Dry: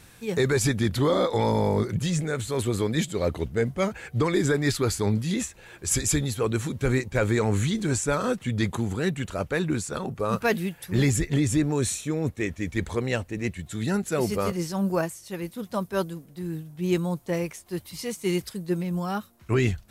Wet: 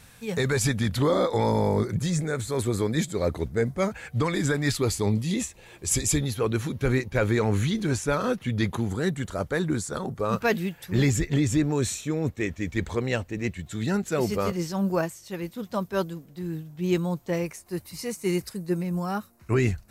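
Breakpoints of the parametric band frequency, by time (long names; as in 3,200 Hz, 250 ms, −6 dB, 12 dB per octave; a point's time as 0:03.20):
parametric band −11 dB 0.29 octaves
350 Hz
from 0:01.02 2,900 Hz
from 0:03.92 380 Hz
from 0:04.75 1,500 Hz
from 0:06.17 7,900 Hz
from 0:08.90 2,600 Hz
from 0:10.20 10,000 Hz
from 0:17.46 3,300 Hz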